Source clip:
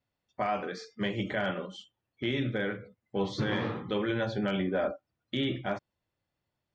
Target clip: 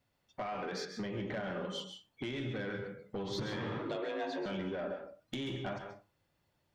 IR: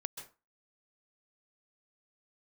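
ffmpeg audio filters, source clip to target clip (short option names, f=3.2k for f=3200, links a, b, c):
-filter_complex "[0:a]asettb=1/sr,asplit=3[a][b][c];[a]atrim=end=0.854[d];[b]atrim=start=0.85:end=1.65,asetpts=PTS-STARTPTS,afade=t=in:d=0.004:c=qsin,afade=t=out:st=0.796:d=0.004:c=qsin,lowpass=f=1.8k:p=1[e];[c]atrim=start=1.646[f];[d][e]acrossfade=d=0.004:c1=hsin:c2=qsin[g];[g][f]acrossfade=d=0.004:c1=qsin:c2=hsin,asplit=2[h][i];[i]alimiter=level_in=6dB:limit=-24dB:level=0:latency=1,volume=-6dB,volume=2.5dB[j];[h][j]amix=inputs=2:normalize=0,acompressor=threshold=-32dB:ratio=12,asoftclip=type=tanh:threshold=-30dB,asettb=1/sr,asplit=3[k][l][m];[k]atrim=end=3.794[n];[l]atrim=start=3.79:end=4.46,asetpts=PTS-STARTPTS,afade=t=in:d=0.004:c=qsin,afade=t=out:st=0.666:d=0.004:c=qsin,afreqshift=150[o];[m]atrim=start=4.456[p];[n][o]acrossfade=d=0.004:c1=hsin:c2=qsin[q];[q][p]acrossfade=d=0.004:c1=qsin:c2=hsin[r];[1:a]atrim=start_sample=2205,asetrate=43659,aresample=44100[s];[r][s]afir=irnorm=-1:irlink=0,volume=1dB"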